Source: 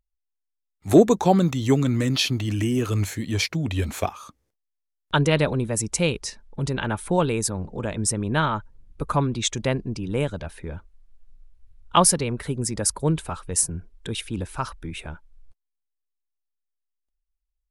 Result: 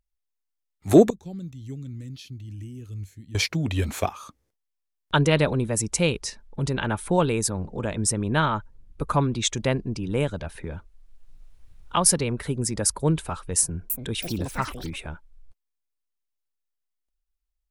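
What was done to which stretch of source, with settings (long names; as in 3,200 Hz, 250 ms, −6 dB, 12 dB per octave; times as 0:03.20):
0:01.10–0:03.35: guitar amp tone stack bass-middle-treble 10-0-1
0:10.55–0:12.06: multiband upward and downward compressor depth 40%
0:13.57–0:14.99: delay with pitch and tempo change per echo 328 ms, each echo +7 semitones, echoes 3, each echo −6 dB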